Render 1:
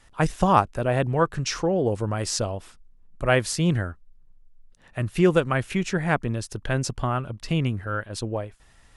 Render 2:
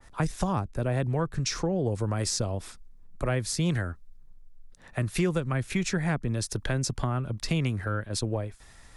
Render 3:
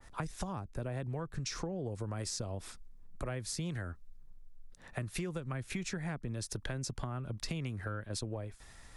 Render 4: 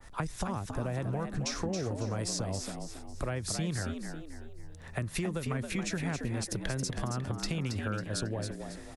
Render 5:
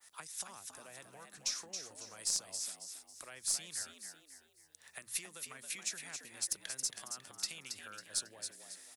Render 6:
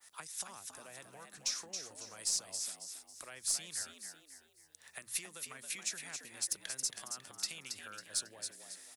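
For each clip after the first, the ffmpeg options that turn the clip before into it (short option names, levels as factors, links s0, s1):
-filter_complex "[0:a]equalizer=f=2900:t=o:w=0.26:g=-7.5,acrossover=split=170|410[s0][s1][s2];[s0]acompressor=threshold=0.0251:ratio=4[s3];[s1]acompressor=threshold=0.0141:ratio=4[s4];[s2]acompressor=threshold=0.0141:ratio=4[s5];[s3][s4][s5]amix=inputs=3:normalize=0,adynamicequalizer=threshold=0.00316:dfrequency=2000:dqfactor=0.7:tfrequency=2000:tqfactor=0.7:attack=5:release=100:ratio=0.375:range=2.5:mode=boostabove:tftype=highshelf,volume=1.41"
-af "acompressor=threshold=0.0224:ratio=5,volume=0.75"
-filter_complex "[0:a]asplit=6[s0][s1][s2][s3][s4][s5];[s1]adelay=274,afreqshift=74,volume=0.447[s6];[s2]adelay=548,afreqshift=148,volume=0.174[s7];[s3]adelay=822,afreqshift=222,volume=0.0676[s8];[s4]adelay=1096,afreqshift=296,volume=0.0266[s9];[s5]adelay=1370,afreqshift=370,volume=0.0104[s10];[s0][s6][s7][s8][s9][s10]amix=inputs=6:normalize=0,volume=1.58"
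-af "aderivative,aeval=exprs='0.112*(cos(1*acos(clip(val(0)/0.112,-1,1)))-cos(1*PI/2))+0.0141*(cos(2*acos(clip(val(0)/0.112,-1,1)))-cos(2*PI/2))':c=same,bandreject=f=60:t=h:w=6,bandreject=f=120:t=h:w=6,volume=1.41"
-af "asoftclip=type=tanh:threshold=0.1,volume=1.12"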